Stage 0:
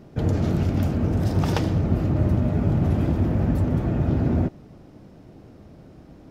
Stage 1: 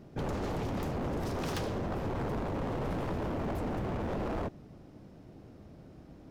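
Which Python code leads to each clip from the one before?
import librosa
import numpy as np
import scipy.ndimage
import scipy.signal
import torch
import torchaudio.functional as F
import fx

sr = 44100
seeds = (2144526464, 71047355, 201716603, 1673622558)

y = 10.0 ** (-23.5 / 20.0) * (np.abs((x / 10.0 ** (-23.5 / 20.0) + 3.0) % 4.0 - 2.0) - 1.0)
y = F.gain(torch.from_numpy(y), -5.5).numpy()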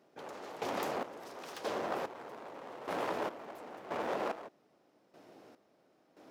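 y = scipy.signal.sosfilt(scipy.signal.butter(2, 490.0, 'highpass', fs=sr, output='sos'), x)
y = fx.rider(y, sr, range_db=10, speed_s=2.0)
y = fx.step_gate(y, sr, bpm=73, pattern='...xx...xx.', floor_db=-12.0, edge_ms=4.5)
y = F.gain(torch.from_numpy(y), 4.5).numpy()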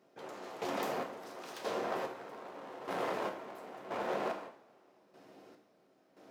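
y = fx.rev_double_slope(x, sr, seeds[0], early_s=0.54, late_s=3.7, knee_db=-27, drr_db=2.5)
y = F.gain(torch.from_numpy(y), -2.0).numpy()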